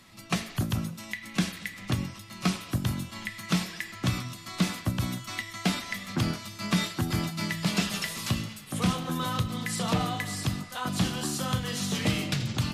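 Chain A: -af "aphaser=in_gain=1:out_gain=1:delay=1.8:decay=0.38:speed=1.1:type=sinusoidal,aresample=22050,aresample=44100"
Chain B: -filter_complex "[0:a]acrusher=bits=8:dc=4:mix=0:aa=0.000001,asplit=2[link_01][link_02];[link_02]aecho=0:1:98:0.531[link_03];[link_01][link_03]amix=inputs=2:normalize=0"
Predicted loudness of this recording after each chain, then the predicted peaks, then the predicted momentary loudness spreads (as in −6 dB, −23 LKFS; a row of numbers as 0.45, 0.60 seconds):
−29.0, −29.5 LKFS; −9.5, −11.5 dBFS; 7, 6 LU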